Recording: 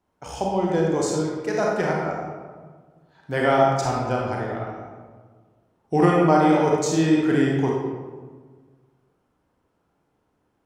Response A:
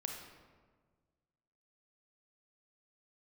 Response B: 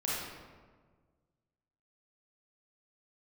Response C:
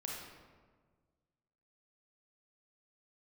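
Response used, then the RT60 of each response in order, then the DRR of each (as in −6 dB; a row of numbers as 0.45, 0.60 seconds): C; 1.5, 1.5, 1.5 seconds; 1.5, −7.5, −3.0 decibels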